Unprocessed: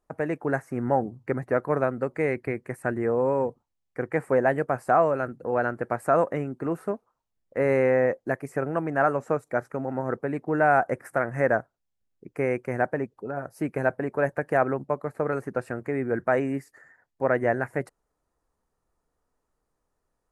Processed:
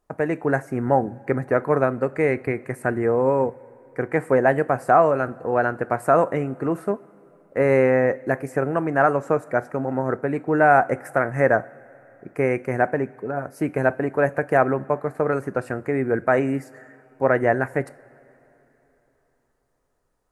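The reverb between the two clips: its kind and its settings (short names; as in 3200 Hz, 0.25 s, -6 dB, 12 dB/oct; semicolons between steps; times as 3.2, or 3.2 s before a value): two-slope reverb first 0.36 s, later 3.6 s, from -19 dB, DRR 14.5 dB; gain +4.5 dB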